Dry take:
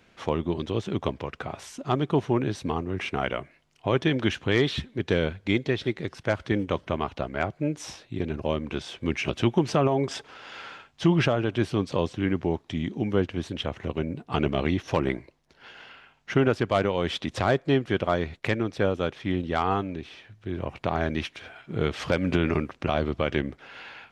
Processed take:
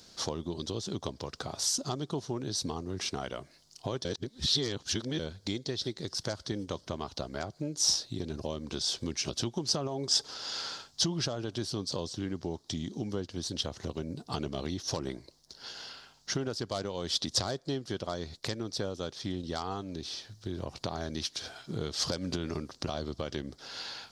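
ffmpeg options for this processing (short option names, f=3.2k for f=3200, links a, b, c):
-filter_complex "[0:a]asplit=3[a][b][c];[a]atrim=end=4.052[d];[b]atrim=start=4.048:end=5.192,asetpts=PTS-STARTPTS,areverse[e];[c]atrim=start=5.188[f];[d][e]acrossfade=d=0.004:c1=hsin:c2=hsin[g];[g][f]acrossfade=d=0.004:c1=hsin:c2=hsin,acompressor=threshold=-34dB:ratio=3,highshelf=f=3.4k:t=q:w=3:g=12"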